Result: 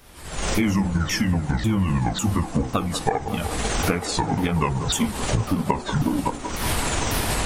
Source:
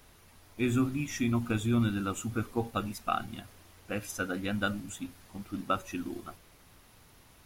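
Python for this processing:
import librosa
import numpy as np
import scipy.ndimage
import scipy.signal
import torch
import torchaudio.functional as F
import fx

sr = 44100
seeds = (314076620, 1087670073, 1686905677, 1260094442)

y = fx.pitch_ramps(x, sr, semitones=-11.5, every_ms=547)
y = fx.recorder_agc(y, sr, target_db=-20.0, rise_db_per_s=63.0, max_gain_db=30)
y = fx.echo_wet_bandpass(y, sr, ms=188, feedback_pct=84, hz=620.0, wet_db=-9.5)
y = y * 10.0 ** (6.0 / 20.0)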